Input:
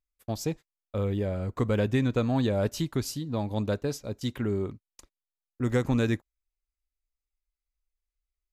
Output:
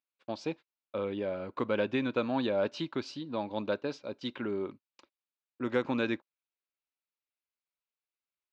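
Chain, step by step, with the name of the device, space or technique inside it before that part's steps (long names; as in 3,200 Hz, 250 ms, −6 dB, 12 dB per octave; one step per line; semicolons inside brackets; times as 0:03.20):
phone earpiece (loudspeaker in its box 410–3,700 Hz, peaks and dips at 440 Hz −7 dB, 720 Hz −8 dB, 1,200 Hz −4 dB, 1,900 Hz −9 dB, 3,300 Hz −4 dB)
level +4.5 dB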